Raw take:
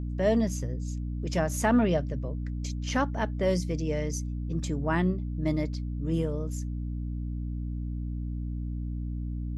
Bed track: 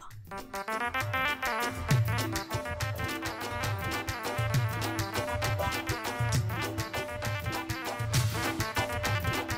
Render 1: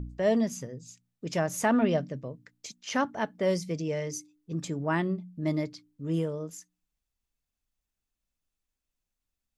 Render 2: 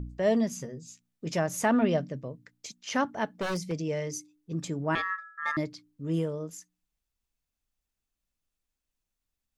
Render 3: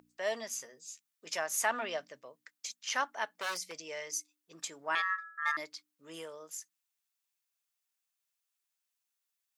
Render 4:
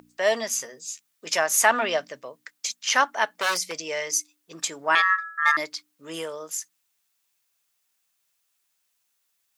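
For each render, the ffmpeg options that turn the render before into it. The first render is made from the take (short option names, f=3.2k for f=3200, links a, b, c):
-af "bandreject=f=60:t=h:w=4,bandreject=f=120:t=h:w=4,bandreject=f=180:t=h:w=4,bandreject=f=240:t=h:w=4,bandreject=f=300:t=h:w=4"
-filter_complex "[0:a]asettb=1/sr,asplit=3[a][b][c];[a]atrim=end=0.584[d];[b]atrim=start=0.58:end=1.36,asetpts=PTS-STARTPTS,afade=t=in:d=0.004:c=qsin,afade=t=out:st=0.776:d=0.004:c=qsin,asplit=2[e][f];[f]adelay=13,volume=-6dB[g];[e][g]amix=inputs=2:normalize=0,atrim=end_sample=34398[h];[c]atrim=start=1.356[i];[d][h]acrossfade=d=0.004:c1=hsin:c2=qsin[j];[j][i]acrossfade=d=0.004:c1=qsin:c2=hsin,asettb=1/sr,asplit=3[k][l][m];[k]atrim=end=3.274[n];[l]atrim=start=3.27:end=3.72,asetpts=PTS-STARTPTS,afade=t=in:d=0.004:c=qsin,afade=t=out:st=0.446:d=0.004:c=qsin,aeval=exprs='0.0531*(abs(mod(val(0)/0.0531+3,4)-2)-1)':c=same[o];[m]atrim=start=3.716[p];[n][o]acrossfade=d=0.004:c1=hsin:c2=qsin[q];[q][p]acrossfade=d=0.004:c1=qsin:c2=hsin,asettb=1/sr,asplit=3[r][s][t];[r]atrim=end=4.954[u];[s]atrim=start=4.95:end=5.57,asetpts=PTS-STARTPTS,afade=t=in:d=0.004:c=qsin,afade=t=out:st=0.616:d=0.004:c=qsin,aeval=exprs='val(0)*sin(2*PI*1500*n/s)':c=same[v];[t]atrim=start=5.566[w];[u][v]acrossfade=d=0.004:c1=hsin:c2=qsin[x];[x][w]acrossfade=d=0.004:c1=qsin:c2=hsin"
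-af "highpass=970,highshelf=f=7.8k:g=5.5"
-af "volume=12dB"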